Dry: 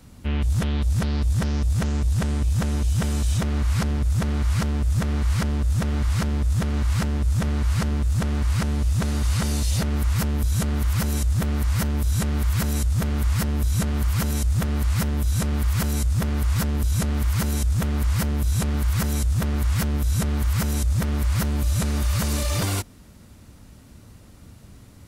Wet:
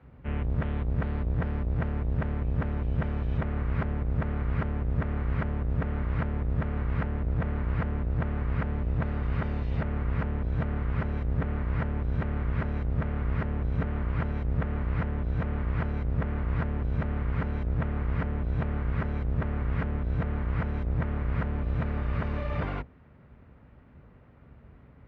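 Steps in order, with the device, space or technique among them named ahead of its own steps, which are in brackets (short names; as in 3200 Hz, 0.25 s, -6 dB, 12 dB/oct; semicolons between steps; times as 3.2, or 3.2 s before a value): sub-octave bass pedal (octaver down 1 oct, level +1 dB; speaker cabinet 66–2200 Hz, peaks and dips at 98 Hz -9 dB, 200 Hz -6 dB, 320 Hz -7 dB); gain -4 dB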